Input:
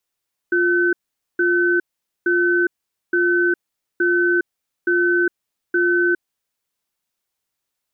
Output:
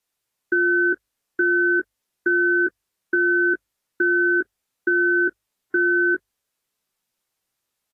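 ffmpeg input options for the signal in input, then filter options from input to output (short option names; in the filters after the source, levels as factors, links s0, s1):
-f lavfi -i "aevalsrc='0.141*(sin(2*PI*350*t)+sin(2*PI*1520*t))*clip(min(mod(t,0.87),0.41-mod(t,0.87))/0.005,0,1)':d=5.63:s=44100"
-filter_complex "[0:a]bandreject=f=50:t=h:w=6,bandreject=f=100:t=h:w=6,asplit=2[s0][s1];[s1]adelay=16,volume=0.422[s2];[s0][s2]amix=inputs=2:normalize=0" -ar 32000 -c:a aac -b:a 48k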